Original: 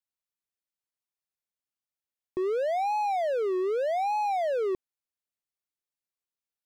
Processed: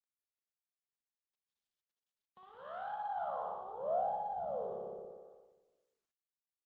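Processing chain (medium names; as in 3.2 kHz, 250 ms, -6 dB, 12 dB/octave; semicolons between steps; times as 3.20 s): flutter echo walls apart 10.1 m, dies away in 1.4 s; in parallel at -4.5 dB: saturation -30.5 dBFS, distortion -7 dB; on the sum: harmonic tremolo 1.6 Hz, depth 50%, crossover 420 Hz; compression 4:1, threshold -28 dBFS, peak gain reduction 7.5 dB; Chebyshev shaper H 3 -33 dB, 6 -44 dB, 8 -33 dB, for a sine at -23.5 dBFS; dynamic bell 710 Hz, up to +4 dB, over -45 dBFS, Q 3.8; one-sided clip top -32 dBFS, bottom -23 dBFS; FFT filter 120 Hz 0 dB, 200 Hz +6 dB, 340 Hz -27 dB, 510 Hz -6 dB, 1.2 kHz -2 dB, 2.3 kHz -29 dB, 3.2 kHz -1 dB, 7.3 kHz -27 dB, 11 kHz 0 dB; band-pass sweep 7.8 kHz -> 430 Hz, 0.77–4.46 s; doubling 37 ms -11.5 dB; on a send at -20 dB: reverberation RT60 1.0 s, pre-delay 137 ms; on the sum: trim +3.5 dB; Opus 24 kbps 48 kHz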